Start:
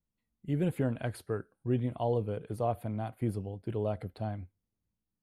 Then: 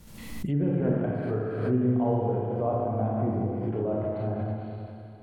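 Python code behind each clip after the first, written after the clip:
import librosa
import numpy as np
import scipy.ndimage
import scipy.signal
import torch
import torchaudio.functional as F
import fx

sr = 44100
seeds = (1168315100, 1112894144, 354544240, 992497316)

y = fx.rev_schroeder(x, sr, rt60_s=2.8, comb_ms=28, drr_db=-5.0)
y = fx.env_lowpass_down(y, sr, base_hz=1300.0, full_db=-25.0)
y = fx.pre_swell(y, sr, db_per_s=51.0)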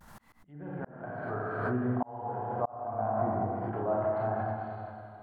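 y = fx.band_shelf(x, sr, hz=1100.0, db=14.5, octaves=1.7)
y = fx.auto_swell(y, sr, attack_ms=661.0)
y = fx.vibrato(y, sr, rate_hz=0.51, depth_cents=34.0)
y = y * librosa.db_to_amplitude(-6.5)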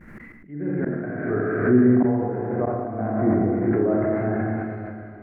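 y = fx.curve_eq(x, sr, hz=(110.0, 350.0, 900.0, 2100.0, 3300.0), db=(0, 10, -14, 8, -18))
y = y + 10.0 ** (-20.5 / 20.0) * np.pad(y, (int(195 * sr / 1000.0), 0))[:len(y)]
y = fx.sustainer(y, sr, db_per_s=32.0)
y = y * librosa.db_to_amplitude(8.0)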